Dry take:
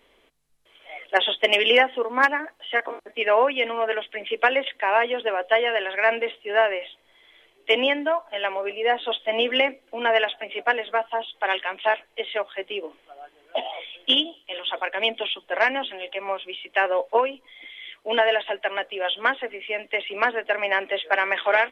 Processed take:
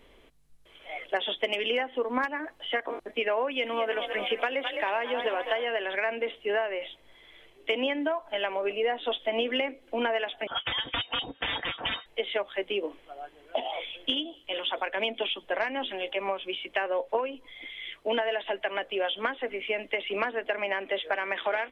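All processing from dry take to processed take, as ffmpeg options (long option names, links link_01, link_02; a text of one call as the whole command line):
ffmpeg -i in.wav -filter_complex "[0:a]asettb=1/sr,asplit=3[link_01][link_02][link_03];[link_01]atrim=end=3.514[link_04];[link_02]atrim=start=3.51:end=5.65,asetpts=PTS-STARTPTS,afade=type=in:duration=0.004:curve=qsin,afade=type=out:start_time=2.136:duration=0.004:curve=qsin,highshelf=frequency=4700:gain=9.5,asplit=8[link_05][link_06][link_07][link_08][link_09][link_10][link_11][link_12];[link_06]adelay=209,afreqshift=35,volume=-11.5dB[link_13];[link_07]adelay=418,afreqshift=70,volume=-15.8dB[link_14];[link_08]adelay=627,afreqshift=105,volume=-20.1dB[link_15];[link_09]adelay=836,afreqshift=140,volume=-24.4dB[link_16];[link_10]adelay=1045,afreqshift=175,volume=-28.7dB[link_17];[link_11]adelay=1254,afreqshift=210,volume=-33dB[link_18];[link_12]adelay=1463,afreqshift=245,volume=-37.3dB[link_19];[link_05][link_13][link_14][link_15][link_16][link_17][link_18][link_19]amix=inputs=8:normalize=0,atrim=end_sample=94374[link_20];[link_03]atrim=start=5.646[link_21];[link_04][link_20]acrossfade=duration=0.004:curve1=hsin:curve2=qsin[link_22];[link_22][link_21]acrossfade=duration=0.004:curve1=qsin:curve2=hsin,asettb=1/sr,asplit=3[link_23][link_24][link_25];[link_23]atrim=end=10.474[link_26];[link_24]atrim=start=10.47:end=12.06,asetpts=PTS-STARTPTS,afade=type=in:duration=0.004:curve=qsin,afade=type=out:start_time=1.586:duration=0.004:curve=qsin,aeval=exprs='(mod(10*val(0)+1,2)-1)/10':channel_layout=same,aecho=1:1:4.7:0.39,atrim=end_sample=70119,lowpass=frequency=3100:width_type=q:width=0.5098,lowpass=frequency=3100:width_type=q:width=0.6013,lowpass=frequency=3100:width_type=q:width=0.9,lowpass=frequency=3100:width_type=q:width=2.563,afreqshift=-3700[link_27];[link_25]atrim=start=12.056[link_28];[link_26][link_27]acrossfade=duration=0.004:curve1=hsin:curve2=qsin[link_29];[link_29][link_28]acrossfade=duration=0.004:curve1=qsin:curve2=hsin,acompressor=threshold=-27dB:ratio=6,lowshelf=frequency=250:gain=11.5" out.wav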